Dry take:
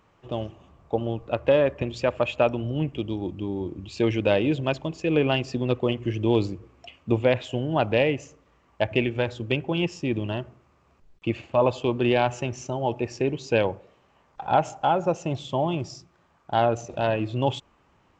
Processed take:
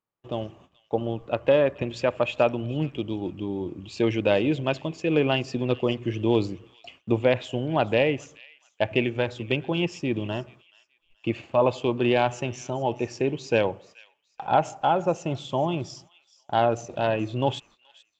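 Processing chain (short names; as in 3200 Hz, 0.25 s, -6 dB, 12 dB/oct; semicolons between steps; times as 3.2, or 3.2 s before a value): gate -50 dBFS, range -29 dB; bell 61 Hz -13.5 dB 0.73 oct; on a send: thin delay 0.428 s, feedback 31%, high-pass 2300 Hz, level -17 dB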